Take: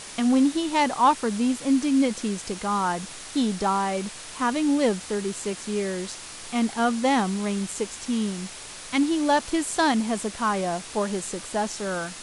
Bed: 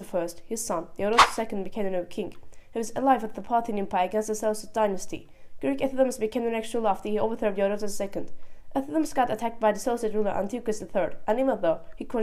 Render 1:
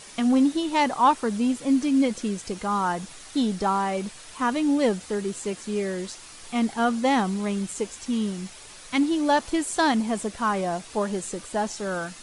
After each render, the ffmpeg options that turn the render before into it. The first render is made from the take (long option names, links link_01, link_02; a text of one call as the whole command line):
ffmpeg -i in.wav -af "afftdn=noise_reduction=7:noise_floor=-40" out.wav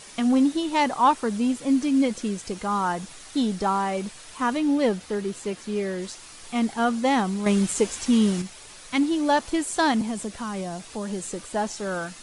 ffmpeg -i in.wav -filter_complex "[0:a]asettb=1/sr,asplit=3[link_01][link_02][link_03];[link_01]atrim=end=4.574[link_04];[link_02]atrim=start=4.57:end=6.02,asetpts=PTS-STARTPTS,afade=type=in:duration=0.004:curve=qsin,afade=type=out:start_time=1.446:duration=0.004:curve=qsin,equalizer=frequency=7900:width_type=o:width=0.77:gain=-5.5[link_05];[link_03]atrim=start=6.016[link_06];[link_04][link_05]acrossfade=duration=0.004:curve1=hsin:curve2=qsin[link_07];[link_07][link_06]acrossfade=duration=0.004:curve1=qsin:curve2=hsin,asettb=1/sr,asplit=3[link_08][link_09][link_10];[link_08]atrim=end=7.464[link_11];[link_09]atrim=start=7.46:end=8.42,asetpts=PTS-STARTPTS,afade=type=in:duration=0.004:curve=qsin,afade=type=out:start_time=0.956:duration=0.004:curve=qsin,acontrast=72[link_12];[link_10]atrim=start=8.416[link_13];[link_11][link_12]acrossfade=duration=0.004:curve1=hsin:curve2=qsin[link_14];[link_14][link_13]acrossfade=duration=0.004:curve1=qsin:curve2=hsin,asettb=1/sr,asplit=3[link_15][link_16][link_17];[link_15]atrim=end=10.014[link_18];[link_16]atrim=start=10.01:end=11.33,asetpts=PTS-STARTPTS,afade=type=in:duration=0.004:curve=qsin,afade=type=out:start_time=1.316:duration=0.004:curve=qsin,acrossover=split=270|3000[link_19][link_20][link_21];[link_20]acompressor=threshold=-32dB:ratio=6:attack=3.2:release=140:knee=2.83:detection=peak[link_22];[link_19][link_22][link_21]amix=inputs=3:normalize=0[link_23];[link_17]atrim=start=11.326[link_24];[link_18][link_23]acrossfade=duration=0.004:curve1=hsin:curve2=qsin[link_25];[link_25][link_24]acrossfade=duration=0.004:curve1=qsin:curve2=hsin" out.wav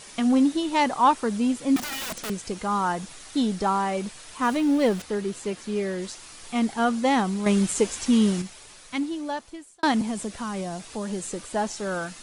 ffmpeg -i in.wav -filter_complex "[0:a]asettb=1/sr,asplit=3[link_01][link_02][link_03];[link_01]atrim=end=1.764[link_04];[link_02]atrim=start=1.76:end=2.3,asetpts=PTS-STARTPTS,afade=type=in:duration=0.004:curve=qsin,afade=type=out:start_time=0.536:duration=0.004:curve=qsin,aeval=exprs='(mod(22.4*val(0)+1,2)-1)/22.4':channel_layout=same[link_05];[link_03]atrim=start=2.296[link_06];[link_04][link_05]acrossfade=duration=0.004:curve1=hsin:curve2=qsin[link_07];[link_07][link_06]acrossfade=duration=0.004:curve1=qsin:curve2=hsin,asettb=1/sr,asplit=3[link_08][link_09][link_10];[link_08]atrim=end=4.434[link_11];[link_09]atrim=start=4.43:end=5.02,asetpts=PTS-STARTPTS,afade=type=in:duration=0.004:curve=qsin,afade=type=out:start_time=0.586:duration=0.004:curve=qsin,aeval=exprs='val(0)+0.5*0.0178*sgn(val(0))':channel_layout=same[link_12];[link_10]atrim=start=5.016[link_13];[link_11][link_12]acrossfade=duration=0.004:curve1=hsin:curve2=qsin[link_14];[link_14][link_13]acrossfade=duration=0.004:curve1=qsin:curve2=hsin,asplit=2[link_15][link_16];[link_15]atrim=end=9.83,asetpts=PTS-STARTPTS,afade=type=out:start_time=8.3:duration=1.53[link_17];[link_16]atrim=start=9.83,asetpts=PTS-STARTPTS,afade=type=in:duration=0.004:curve=hsin[link_18];[link_17][link_18]concat=n=2:v=0:a=1" out.wav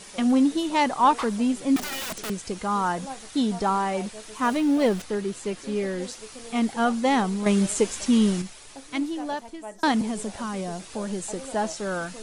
ffmpeg -i in.wav -i bed.wav -filter_complex "[1:a]volume=-16.5dB[link_01];[0:a][link_01]amix=inputs=2:normalize=0" out.wav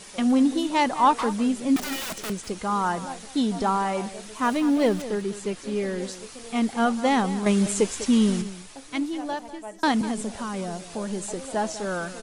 ffmpeg -i in.wav -filter_complex "[0:a]asplit=2[link_01][link_02];[link_02]adelay=198.3,volume=-14dB,highshelf=frequency=4000:gain=-4.46[link_03];[link_01][link_03]amix=inputs=2:normalize=0" out.wav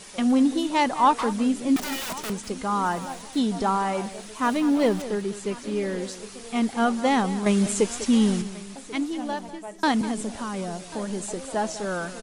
ffmpeg -i in.wav -af "aecho=1:1:1090|2180:0.1|0.025" out.wav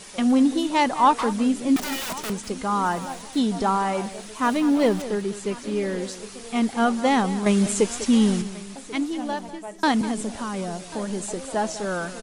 ffmpeg -i in.wav -af "volume=1.5dB" out.wav